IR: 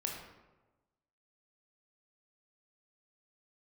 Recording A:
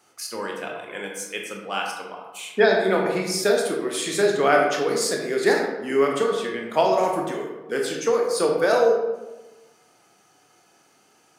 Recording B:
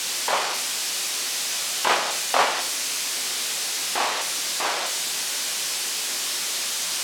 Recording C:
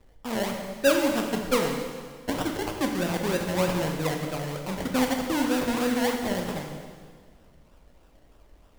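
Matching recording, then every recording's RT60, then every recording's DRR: A; 1.2 s, 0.55 s, 1.8 s; 0.0 dB, 4.0 dB, 2.0 dB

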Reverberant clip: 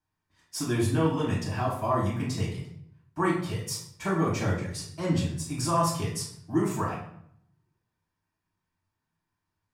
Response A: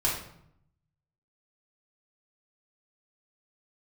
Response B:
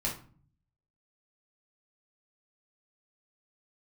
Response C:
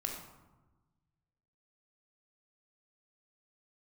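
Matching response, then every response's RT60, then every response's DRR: A; 0.70 s, 0.45 s, 1.2 s; -7.0 dB, -4.0 dB, 1.0 dB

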